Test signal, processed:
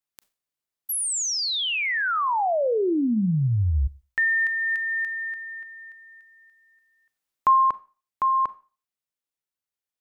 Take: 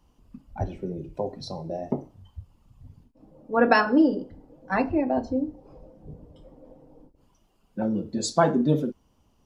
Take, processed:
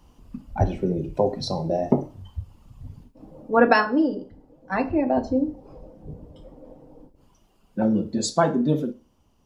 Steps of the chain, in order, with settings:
four-comb reverb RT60 0.35 s, combs from 29 ms, DRR 16.5 dB
speech leveller within 5 dB 0.5 s
level +3 dB

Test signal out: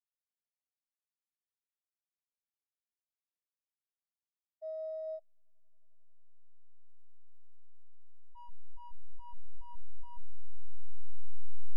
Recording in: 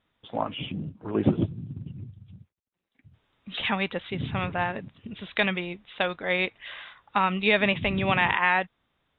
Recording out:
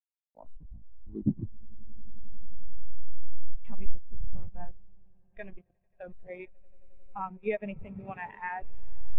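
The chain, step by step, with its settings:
hold until the input has moved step −22.5 dBFS
echo that builds up and dies away 89 ms, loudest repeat 8, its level −18 dB
every bin expanded away from the loudest bin 2.5 to 1
level −1 dB

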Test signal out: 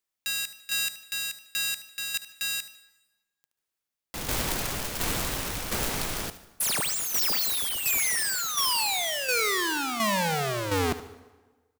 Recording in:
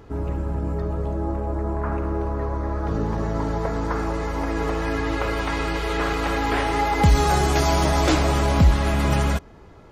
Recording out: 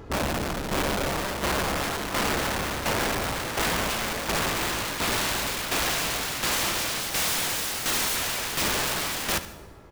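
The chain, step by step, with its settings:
wrap-around overflow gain 23 dB
shaped tremolo saw down 1.4 Hz, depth 60%
on a send: repeating echo 74 ms, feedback 32%, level −14 dB
on the sum: dense smooth reverb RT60 1.3 s, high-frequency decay 0.75×, pre-delay 90 ms, DRR 18.5 dB
level +3 dB

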